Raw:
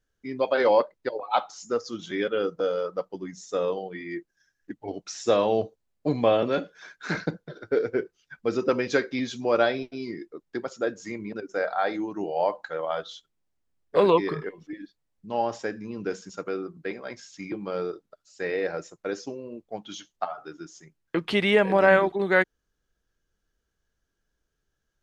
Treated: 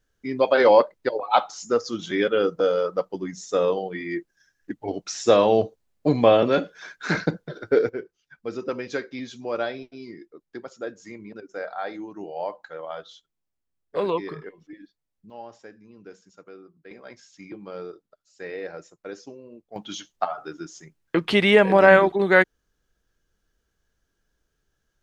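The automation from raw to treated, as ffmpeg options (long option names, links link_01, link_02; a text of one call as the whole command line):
ffmpeg -i in.wav -af "asetnsamples=nb_out_samples=441:pad=0,asendcmd='7.89 volume volume -5.5dB;15.3 volume volume -14dB;16.91 volume volume -6dB;19.76 volume volume 4.5dB',volume=5dB" out.wav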